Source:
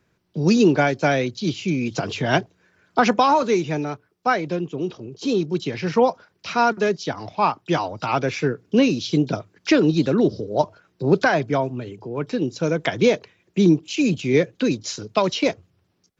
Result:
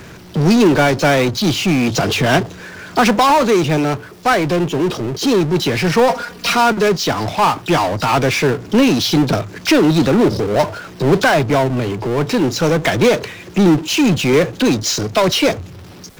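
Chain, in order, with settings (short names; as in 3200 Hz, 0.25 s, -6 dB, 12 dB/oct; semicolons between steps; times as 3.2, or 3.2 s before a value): power-law curve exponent 0.5; 6.09–6.55 comb 4.2 ms, depth 82%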